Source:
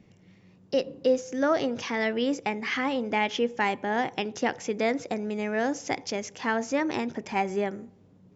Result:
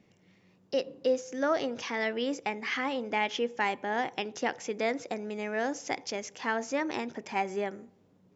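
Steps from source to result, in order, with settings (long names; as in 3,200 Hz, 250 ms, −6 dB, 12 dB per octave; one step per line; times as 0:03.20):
low-shelf EQ 180 Hz −11 dB
level −2.5 dB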